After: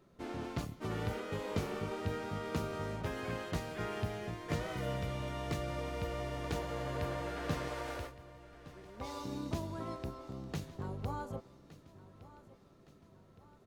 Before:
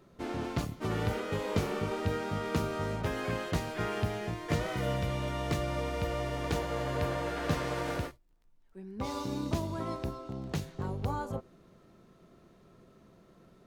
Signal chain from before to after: 7.68–9.23 s: peaking EQ 170 Hz -14.5 dB 0.81 oct; on a send: feedback delay 1165 ms, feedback 49%, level -17.5 dB; on the sum: trim -5.5 dB

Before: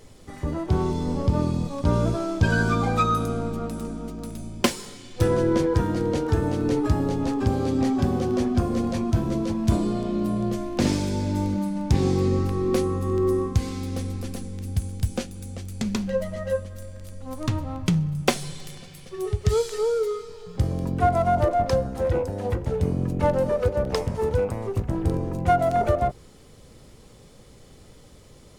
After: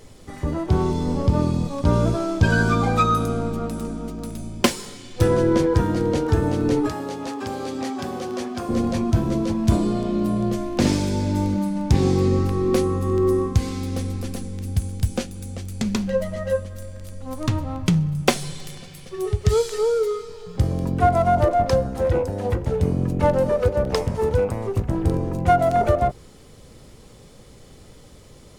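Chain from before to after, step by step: 6.89–8.69 s: high-pass 740 Hz 6 dB/octave; trim +3 dB

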